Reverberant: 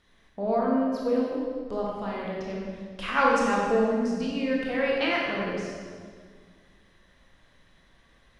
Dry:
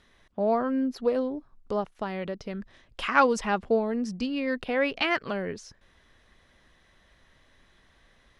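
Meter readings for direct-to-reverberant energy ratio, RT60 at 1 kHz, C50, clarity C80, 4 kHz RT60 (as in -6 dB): -4.0 dB, 1.7 s, -1.5 dB, 1.0 dB, 1.4 s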